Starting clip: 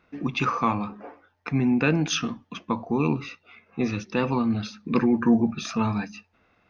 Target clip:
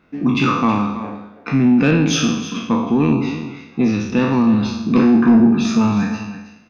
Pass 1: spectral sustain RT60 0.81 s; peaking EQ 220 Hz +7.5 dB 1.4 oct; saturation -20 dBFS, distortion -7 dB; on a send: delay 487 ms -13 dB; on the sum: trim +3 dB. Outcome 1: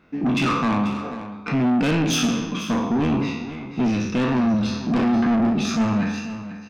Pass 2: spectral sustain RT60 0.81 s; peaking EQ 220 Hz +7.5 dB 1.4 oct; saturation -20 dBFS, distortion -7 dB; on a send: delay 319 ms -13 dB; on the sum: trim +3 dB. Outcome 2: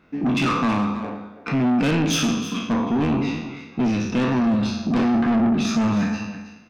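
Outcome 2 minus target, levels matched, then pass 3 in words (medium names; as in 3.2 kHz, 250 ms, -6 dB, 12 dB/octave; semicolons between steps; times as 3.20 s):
saturation: distortion +12 dB
spectral sustain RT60 0.81 s; peaking EQ 220 Hz +7.5 dB 1.4 oct; saturation -8 dBFS, distortion -19 dB; on a send: delay 319 ms -13 dB; on the sum: trim +3 dB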